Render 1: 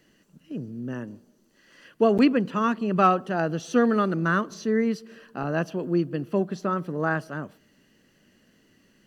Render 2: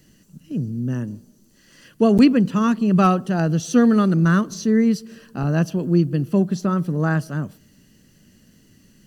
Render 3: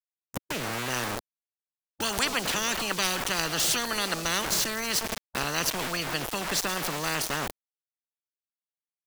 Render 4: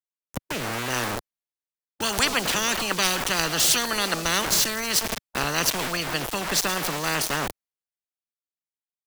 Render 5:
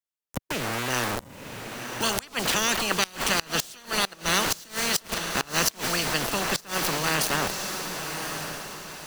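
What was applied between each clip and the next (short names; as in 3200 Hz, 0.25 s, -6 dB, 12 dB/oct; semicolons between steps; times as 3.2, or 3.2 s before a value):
tone controls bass +14 dB, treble +12 dB
sample gate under -35.5 dBFS; spectral compressor 10:1
three-band expander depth 40%; gain +4 dB
diffused feedback echo 1.062 s, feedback 41%, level -7 dB; flipped gate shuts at -10 dBFS, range -24 dB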